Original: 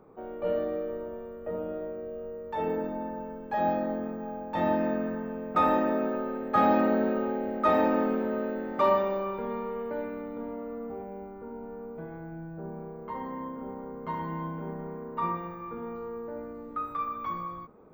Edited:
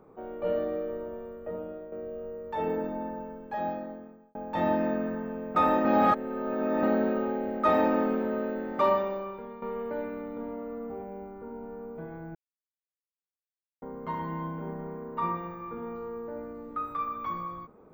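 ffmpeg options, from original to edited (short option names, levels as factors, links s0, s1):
-filter_complex "[0:a]asplit=8[s0][s1][s2][s3][s4][s5][s6][s7];[s0]atrim=end=1.92,asetpts=PTS-STARTPTS,afade=t=out:st=1.3:d=0.62:silence=0.375837[s8];[s1]atrim=start=1.92:end=4.35,asetpts=PTS-STARTPTS,afade=t=in:d=0.004:c=hsin:silence=0.375837,afade=t=out:st=1.16:d=1.27[s9];[s2]atrim=start=4.35:end=5.852,asetpts=PTS-STARTPTS,afade=t=in:d=0.004:c=hsin[s10];[s3]atrim=start=5.848:end=6.832,asetpts=PTS-STARTPTS,areverse[s11];[s4]atrim=start=6.828:end=9.62,asetpts=PTS-STARTPTS,afade=t=out:st=1.962:d=0.83:silence=0.251189[s12];[s5]atrim=start=9.62:end=12.35,asetpts=PTS-STARTPTS,afade=t=in:d=0.004:c=hsin:silence=0.251189,afade=t=out:st=2.726:d=0.004:c=hsin[s13];[s6]atrim=start=12.35:end=13.82,asetpts=PTS-STARTPTS,volume=0[s14];[s7]atrim=start=13.82,asetpts=PTS-STARTPTS,afade=t=in:d=0.004:c=hsin[s15];[s8][s9][s10]concat=n=3:v=0:a=1[s16];[s16][s11]acrossfade=d=0.004:c1=hsin:c2=hsin[s17];[s12][s13][s14][s15]concat=n=4:v=0:a=1[s18];[s17][s18]acrossfade=d=0.004:c1=hsin:c2=hsin"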